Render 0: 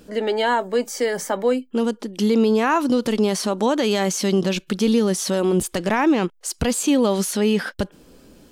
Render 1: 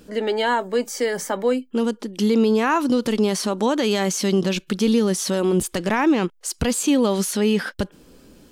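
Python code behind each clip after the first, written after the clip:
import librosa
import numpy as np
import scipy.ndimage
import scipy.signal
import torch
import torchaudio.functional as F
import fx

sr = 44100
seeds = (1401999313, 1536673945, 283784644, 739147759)

y = fx.peak_eq(x, sr, hz=670.0, db=-2.5, octaves=0.68)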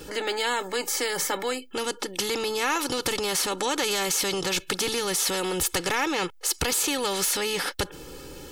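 y = x + 0.88 * np.pad(x, (int(2.3 * sr / 1000.0), 0))[:len(x)]
y = fx.spectral_comp(y, sr, ratio=2.0)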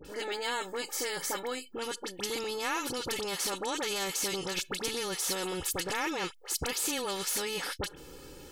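y = fx.dispersion(x, sr, late='highs', ms=50.0, hz=1600.0)
y = F.gain(torch.from_numpy(y), -7.0).numpy()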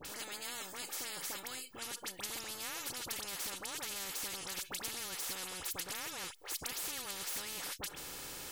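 y = fx.spectral_comp(x, sr, ratio=4.0)
y = F.gain(torch.from_numpy(y), -5.5).numpy()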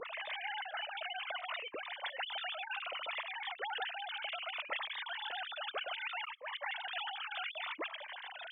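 y = fx.sine_speech(x, sr)
y = fx.notch_cascade(y, sr, direction='falling', hz=0.65)
y = F.gain(torch.from_numpy(y), 3.5).numpy()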